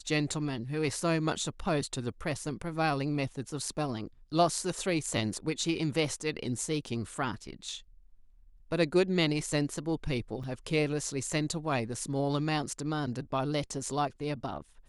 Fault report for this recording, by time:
10.43–10.44 s: dropout 5.5 ms

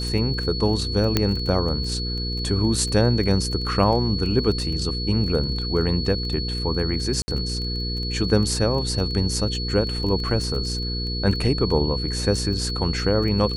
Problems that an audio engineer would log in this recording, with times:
crackle 14 per s -28 dBFS
hum 60 Hz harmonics 8 -28 dBFS
whine 4.4 kHz -29 dBFS
1.17 s: pop -4 dBFS
7.22–7.28 s: dropout 60 ms

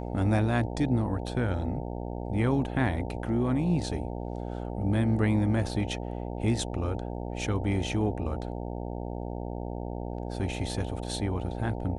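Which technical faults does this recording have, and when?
buzz 60 Hz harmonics 15 -35 dBFS

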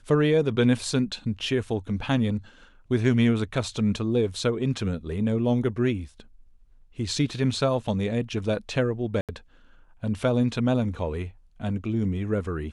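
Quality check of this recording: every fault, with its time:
9.21–9.29 s: dropout 77 ms

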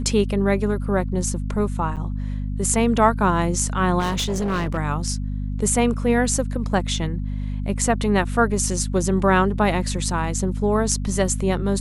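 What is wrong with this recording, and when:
hum 50 Hz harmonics 5 -26 dBFS
1.96–1.97 s: dropout 7.7 ms
3.99–4.78 s: clipped -19.5 dBFS

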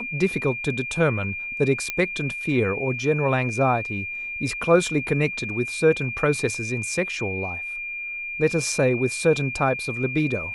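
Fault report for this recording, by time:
whine 2.4 kHz -29 dBFS
1.90 s: pop -10 dBFS

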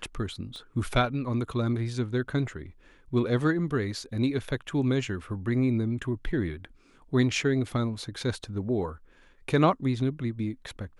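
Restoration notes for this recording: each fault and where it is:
0.56 s: pop -31 dBFS

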